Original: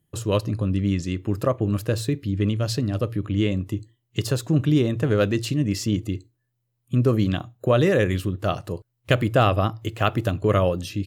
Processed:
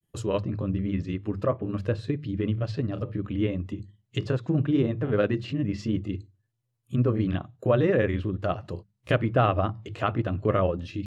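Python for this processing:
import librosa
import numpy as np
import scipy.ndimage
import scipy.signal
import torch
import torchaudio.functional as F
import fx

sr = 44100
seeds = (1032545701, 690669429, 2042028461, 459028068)

y = fx.hum_notches(x, sr, base_hz=50, count=4)
y = fx.env_lowpass_down(y, sr, base_hz=2300.0, full_db=-21.0)
y = fx.granulator(y, sr, seeds[0], grain_ms=100.0, per_s=20.0, spray_ms=16.0, spread_st=0)
y = F.gain(torch.from_numpy(y), -2.0).numpy()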